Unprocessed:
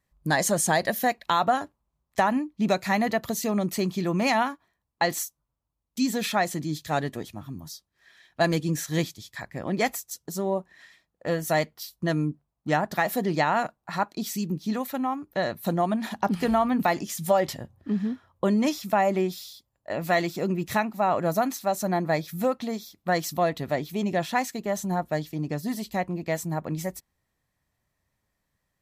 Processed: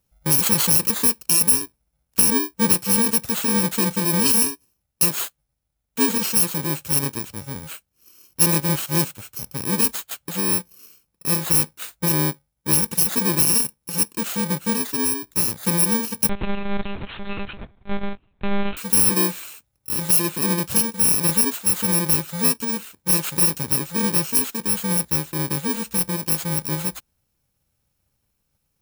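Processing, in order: FFT order left unsorted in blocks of 64 samples; 16.29–18.77 monotone LPC vocoder at 8 kHz 200 Hz; gain +5.5 dB

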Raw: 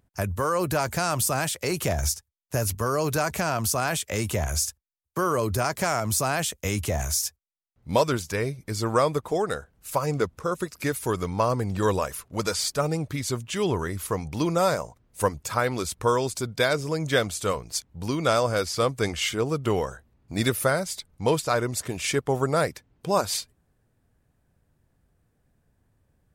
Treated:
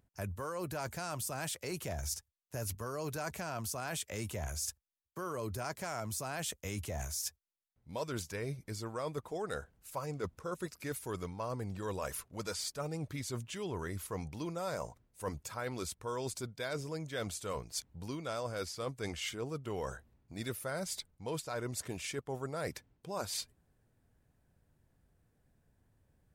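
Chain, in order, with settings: notch 1200 Hz, Q 22; reverse; compressor 6:1, threshold -32 dBFS, peak gain reduction 15.5 dB; reverse; gain -4 dB

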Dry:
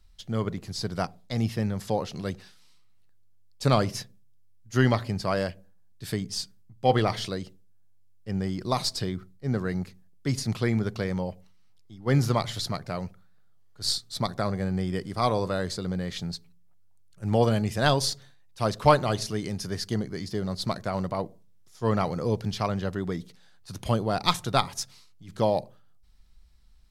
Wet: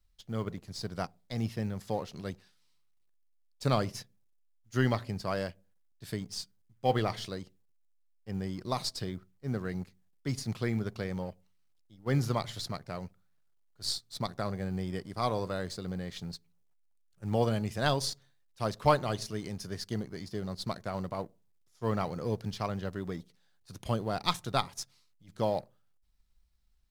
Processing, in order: G.711 law mismatch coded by A; gain -5.5 dB

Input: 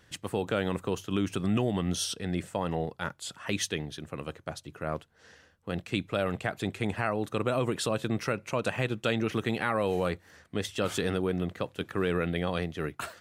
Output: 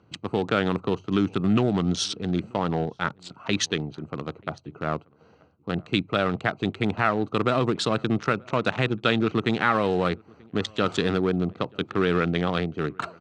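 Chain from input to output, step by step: Wiener smoothing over 25 samples; speaker cabinet 110–6900 Hz, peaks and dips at 540 Hz -5 dB, 1300 Hz +5 dB, 3900 Hz +4 dB; outdoor echo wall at 160 m, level -27 dB; gain +7 dB

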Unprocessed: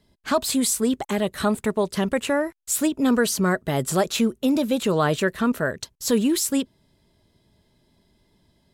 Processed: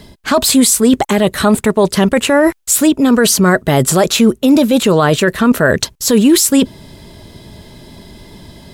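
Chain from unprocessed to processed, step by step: reverse; compressor 6:1, threshold -34 dBFS, peak gain reduction 17.5 dB; reverse; maximiser +27.5 dB; gain -1 dB

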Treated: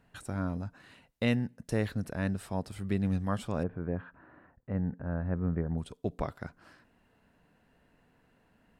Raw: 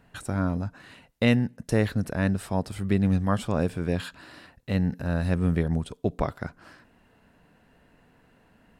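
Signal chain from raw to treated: 3.63–5.78 LPF 1600 Hz 24 dB/oct; gain -7 dB

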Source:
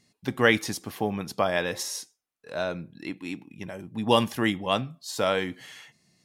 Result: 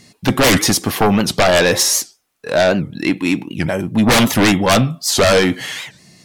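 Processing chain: in parallel at -3.5 dB: sine folder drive 19 dB, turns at -4.5 dBFS; on the sum: record warp 78 rpm, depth 250 cents; gain -1 dB

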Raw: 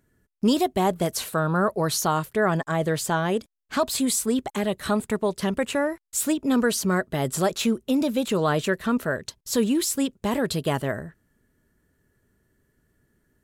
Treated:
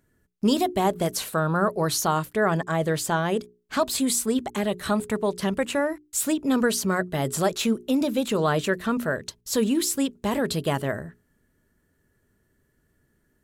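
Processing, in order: notches 60/120/180/240/300/360/420 Hz

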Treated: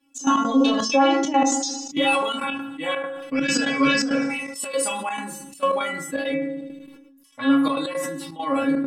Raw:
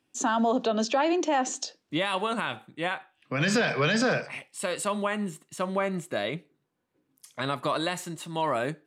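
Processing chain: metallic resonator 270 Hz, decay 0.46 s, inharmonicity 0.002; reverb removal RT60 0.59 s; thin delay 79 ms, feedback 68%, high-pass 4300 Hz, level -20 dB; FDN reverb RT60 0.62 s, low-frequency decay 1.25×, high-frequency decay 0.45×, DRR 0.5 dB; step gate "xx.x.xxxx.xx" 168 bpm -12 dB; high shelf 4900 Hz +4 dB, from 6.34 s -4.5 dB; maximiser +26 dB; sustainer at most 39 dB/s; gain -7 dB

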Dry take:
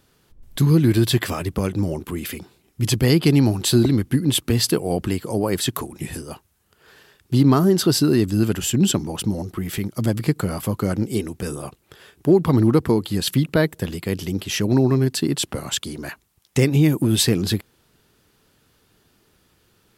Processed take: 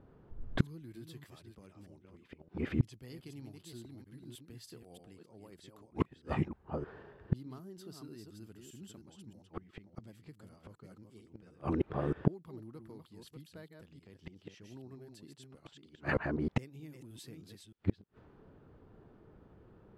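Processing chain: reverse delay 0.311 s, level -5 dB; low-pass opened by the level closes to 810 Hz, open at -15.5 dBFS; flipped gate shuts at -19 dBFS, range -37 dB; gain +3.5 dB

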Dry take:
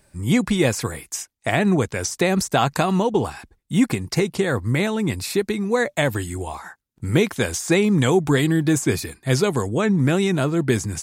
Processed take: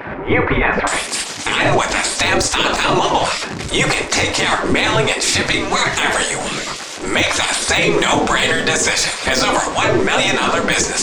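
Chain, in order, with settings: zero-crossing step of -33 dBFS; reverb RT60 0.45 s, pre-delay 5 ms, DRR 5.5 dB; flange 1.7 Hz, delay 0.1 ms, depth 4.5 ms, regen +79%; LPF 2000 Hz 24 dB/oct, from 0.87 s 7500 Hz; spectral gate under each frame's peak -15 dB weak; de-esser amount 75%; maximiser +26 dB; gain -4 dB

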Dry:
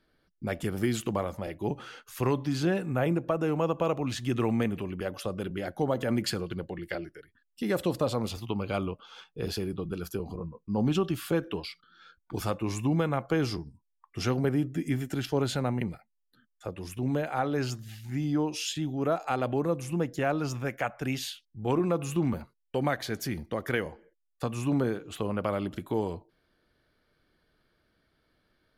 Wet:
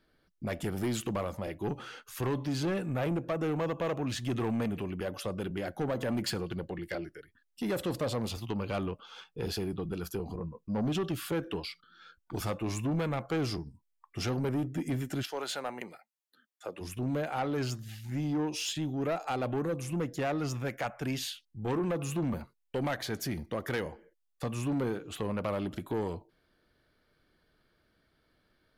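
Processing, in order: 15.22–16.8 HPF 720 Hz -> 290 Hz 12 dB/oct; soft clip -26 dBFS, distortion -11 dB

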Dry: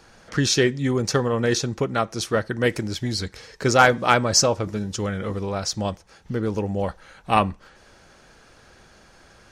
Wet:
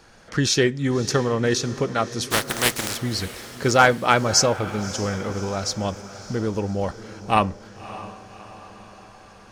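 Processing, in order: 2.3–2.96 spectral contrast lowered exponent 0.27; diffused feedback echo 0.593 s, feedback 55%, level -15 dB

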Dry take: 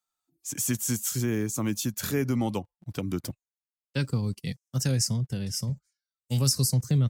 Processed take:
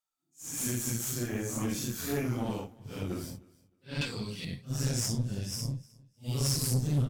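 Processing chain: phase scrambler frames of 0.2 s; 4.01–4.45 weighting filter D; tube stage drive 23 dB, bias 0.75; on a send: feedback echo 0.309 s, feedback 20%, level -23.5 dB

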